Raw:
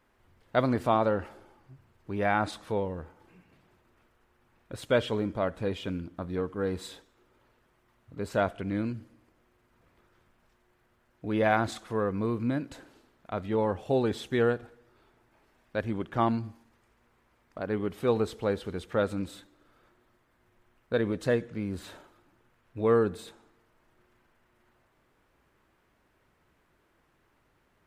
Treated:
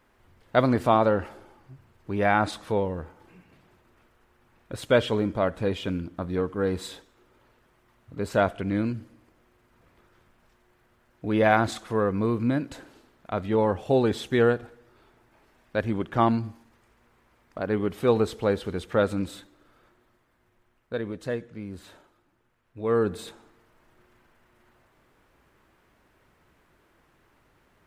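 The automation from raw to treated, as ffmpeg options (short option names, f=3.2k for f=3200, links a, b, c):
-af "volume=14dB,afade=t=out:st=19.35:d=1.69:silence=0.375837,afade=t=in:st=22.83:d=0.41:silence=0.334965"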